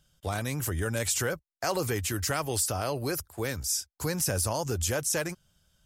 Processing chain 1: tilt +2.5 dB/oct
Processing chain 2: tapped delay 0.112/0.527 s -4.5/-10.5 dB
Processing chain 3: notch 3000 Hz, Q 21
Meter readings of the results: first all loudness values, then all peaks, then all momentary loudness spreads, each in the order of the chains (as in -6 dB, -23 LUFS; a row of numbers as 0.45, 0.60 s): -24.5, -28.5, -30.0 LUFS; -7.5, -12.0, -15.5 dBFS; 10, 6, 6 LU